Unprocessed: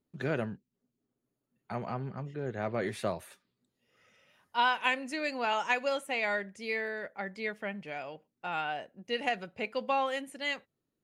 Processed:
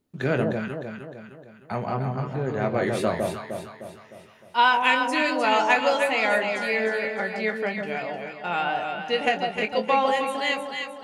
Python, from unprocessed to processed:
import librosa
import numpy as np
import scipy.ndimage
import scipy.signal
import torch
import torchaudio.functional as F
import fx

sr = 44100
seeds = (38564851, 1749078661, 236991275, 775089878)

y = fx.doubler(x, sr, ms=23.0, db=-9)
y = fx.echo_alternate(y, sr, ms=153, hz=930.0, feedback_pct=69, wet_db=-2.5)
y = F.gain(torch.from_numpy(y), 7.0).numpy()